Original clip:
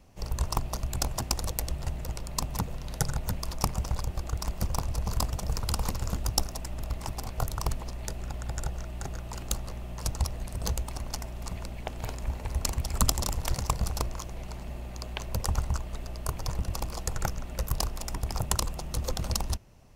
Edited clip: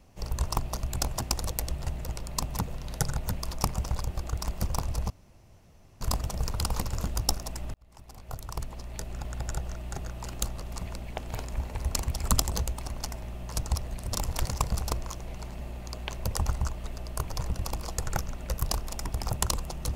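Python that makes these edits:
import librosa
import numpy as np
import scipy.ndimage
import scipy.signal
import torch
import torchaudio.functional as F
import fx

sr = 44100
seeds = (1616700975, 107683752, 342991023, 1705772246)

y = fx.edit(x, sr, fx.insert_room_tone(at_s=5.1, length_s=0.91),
    fx.fade_in_span(start_s=6.83, length_s=1.54),
    fx.swap(start_s=9.71, length_s=0.9, other_s=11.32, other_length_s=1.89), tone=tone)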